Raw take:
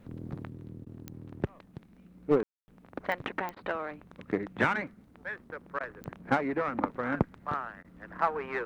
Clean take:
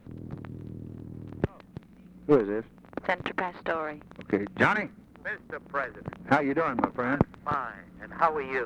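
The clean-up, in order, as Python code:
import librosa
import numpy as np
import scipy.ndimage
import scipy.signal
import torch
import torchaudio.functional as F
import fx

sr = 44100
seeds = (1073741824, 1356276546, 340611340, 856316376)

y = fx.fix_declick_ar(x, sr, threshold=10.0)
y = fx.fix_ambience(y, sr, seeds[0], print_start_s=1.43, print_end_s=1.93, start_s=2.43, end_s=2.68)
y = fx.fix_interpolate(y, sr, at_s=(0.85, 3.55, 5.79, 7.83), length_ms=13.0)
y = fx.gain(y, sr, db=fx.steps((0.0, 0.0), (0.49, 4.0)))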